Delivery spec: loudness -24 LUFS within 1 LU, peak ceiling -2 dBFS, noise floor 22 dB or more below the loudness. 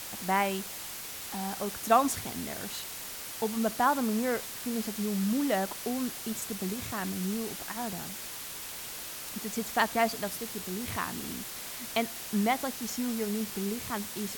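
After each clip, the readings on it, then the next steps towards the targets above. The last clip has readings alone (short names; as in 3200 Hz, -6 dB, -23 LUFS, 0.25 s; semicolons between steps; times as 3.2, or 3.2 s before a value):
noise floor -41 dBFS; noise floor target -54 dBFS; loudness -32.0 LUFS; peak -11.0 dBFS; loudness target -24.0 LUFS
-> denoiser 13 dB, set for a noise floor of -41 dBFS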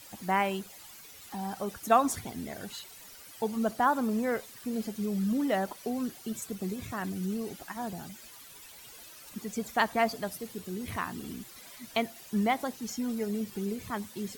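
noise floor -50 dBFS; noise floor target -55 dBFS
-> denoiser 6 dB, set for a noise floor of -50 dBFS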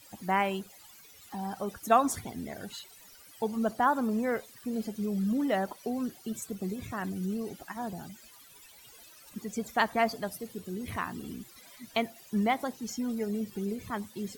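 noise floor -54 dBFS; noise floor target -55 dBFS
-> denoiser 6 dB, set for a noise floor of -54 dBFS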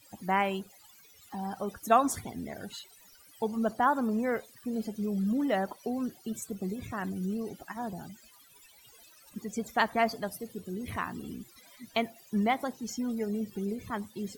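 noise floor -58 dBFS; loudness -32.5 LUFS; peak -11.0 dBFS; loudness target -24.0 LUFS
-> gain +8.5 dB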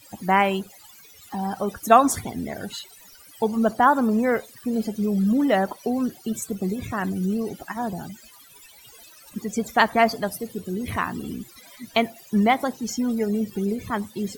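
loudness -24.0 LUFS; peak -2.5 dBFS; noise floor -49 dBFS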